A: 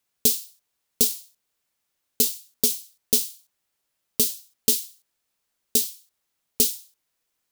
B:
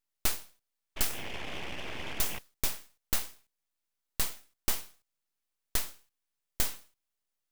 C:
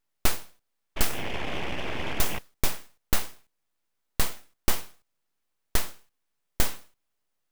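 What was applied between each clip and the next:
painted sound noise, 0.96–2.39 s, 570–1900 Hz -29 dBFS; full-wave rectifier; trim -7.5 dB
treble shelf 2.5 kHz -7.5 dB; trim +9 dB

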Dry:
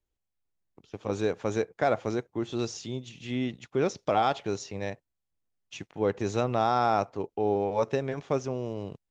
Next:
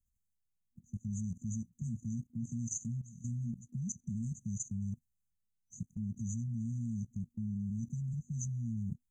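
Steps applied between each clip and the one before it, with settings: FFT band-reject 240–6000 Hz; level held to a coarse grid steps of 15 dB; trim +8.5 dB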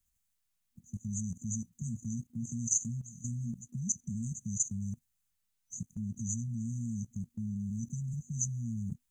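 tilt shelf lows -5 dB, about 650 Hz; trim +5 dB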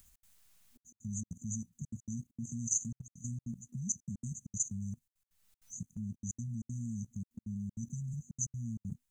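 upward compressor, threshold -46 dBFS; trance gate "xx.xxxxxxx.x.x" 195 bpm -60 dB; trim -2.5 dB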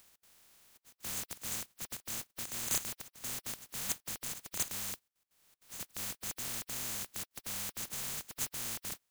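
spectral contrast reduction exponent 0.12

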